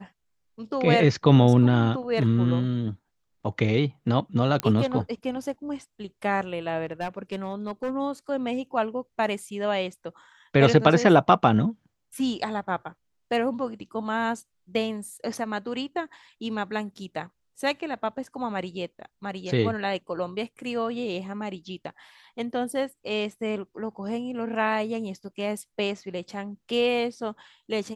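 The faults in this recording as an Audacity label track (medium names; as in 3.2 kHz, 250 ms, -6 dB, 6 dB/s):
4.600000	4.600000	pop -10 dBFS
6.850000	7.910000	clipped -24.5 dBFS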